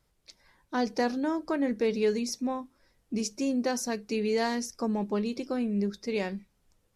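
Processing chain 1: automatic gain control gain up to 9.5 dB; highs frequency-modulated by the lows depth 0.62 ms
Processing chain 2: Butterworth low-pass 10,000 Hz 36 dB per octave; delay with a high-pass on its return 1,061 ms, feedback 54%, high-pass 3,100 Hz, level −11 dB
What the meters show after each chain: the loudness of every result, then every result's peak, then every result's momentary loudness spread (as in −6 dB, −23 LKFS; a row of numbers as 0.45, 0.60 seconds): −21.5, −30.5 LKFS; −6.5, −16.0 dBFS; 6, 6 LU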